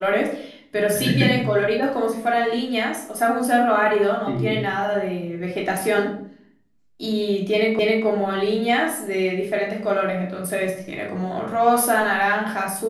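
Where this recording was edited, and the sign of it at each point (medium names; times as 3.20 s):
7.79 s: repeat of the last 0.27 s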